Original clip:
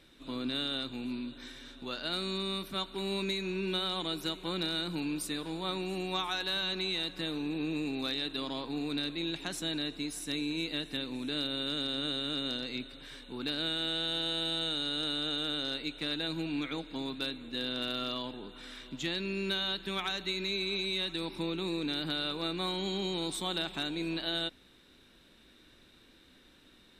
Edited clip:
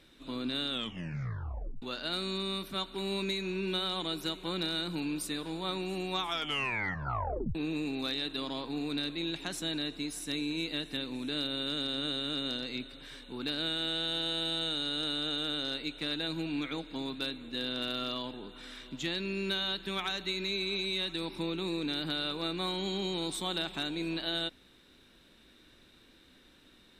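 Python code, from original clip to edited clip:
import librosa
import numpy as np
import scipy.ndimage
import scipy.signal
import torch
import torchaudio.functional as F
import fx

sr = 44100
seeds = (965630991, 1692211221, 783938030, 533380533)

y = fx.edit(x, sr, fx.tape_stop(start_s=0.69, length_s=1.13),
    fx.tape_stop(start_s=6.22, length_s=1.33), tone=tone)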